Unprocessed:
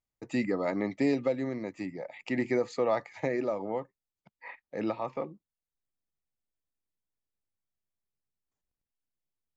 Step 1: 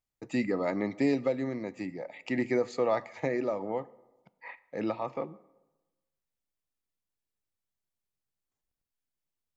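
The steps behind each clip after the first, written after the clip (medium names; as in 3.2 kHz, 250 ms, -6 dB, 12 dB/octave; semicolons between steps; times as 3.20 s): plate-style reverb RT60 1.1 s, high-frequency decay 0.65×, DRR 18 dB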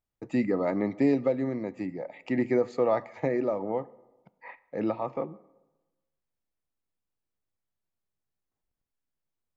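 treble shelf 2.2 kHz -11.5 dB; trim +3.5 dB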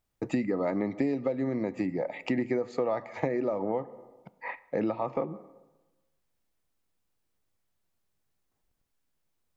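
compression 6:1, threshold -34 dBFS, peak gain reduction 14.5 dB; trim +8 dB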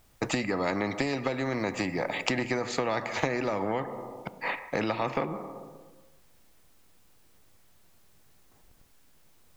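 spectrum-flattening compressor 2:1; trim +7.5 dB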